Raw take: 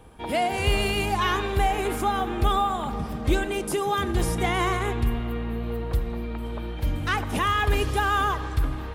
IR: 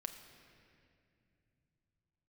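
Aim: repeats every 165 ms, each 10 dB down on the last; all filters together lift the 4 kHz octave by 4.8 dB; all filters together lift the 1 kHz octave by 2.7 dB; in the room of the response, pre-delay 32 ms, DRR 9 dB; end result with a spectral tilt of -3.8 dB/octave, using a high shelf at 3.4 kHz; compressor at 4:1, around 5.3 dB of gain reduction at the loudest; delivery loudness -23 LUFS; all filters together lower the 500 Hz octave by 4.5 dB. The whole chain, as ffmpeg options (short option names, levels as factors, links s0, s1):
-filter_complex "[0:a]equalizer=f=500:t=o:g=-8,equalizer=f=1000:t=o:g=5.5,highshelf=f=3400:g=4.5,equalizer=f=4000:t=o:g=3.5,acompressor=threshold=0.0708:ratio=4,aecho=1:1:165|330|495|660:0.316|0.101|0.0324|0.0104,asplit=2[s0][s1];[1:a]atrim=start_sample=2205,adelay=32[s2];[s1][s2]afir=irnorm=-1:irlink=0,volume=0.473[s3];[s0][s3]amix=inputs=2:normalize=0,volume=1.58"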